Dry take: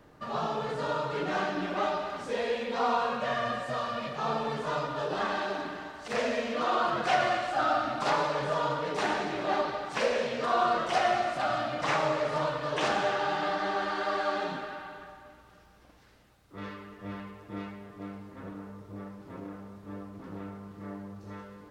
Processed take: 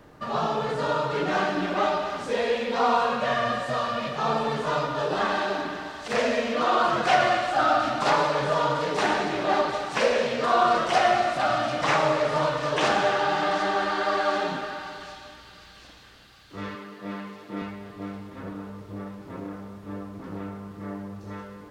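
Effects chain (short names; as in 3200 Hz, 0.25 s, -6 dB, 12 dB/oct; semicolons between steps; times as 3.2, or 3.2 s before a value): 16.75–17.62 HPF 150 Hz 24 dB/oct; on a send: thin delay 0.747 s, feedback 61%, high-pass 3300 Hz, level -9.5 dB; on the sum: gain +5.5 dB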